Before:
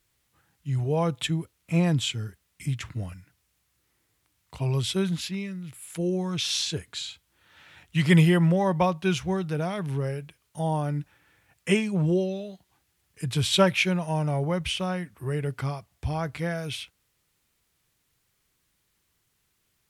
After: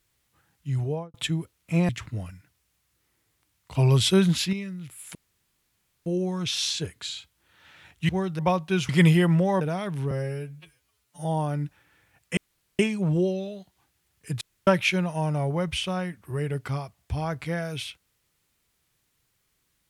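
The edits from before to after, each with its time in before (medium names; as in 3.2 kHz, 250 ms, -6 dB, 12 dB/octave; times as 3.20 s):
0.80–1.14 s: studio fade out
1.89–2.72 s: delete
4.58–5.36 s: gain +6.5 dB
5.98 s: insert room tone 0.91 s
8.01–8.73 s: swap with 9.23–9.53 s
10.03–10.60 s: stretch 2×
11.72 s: insert room tone 0.42 s
13.34–13.60 s: room tone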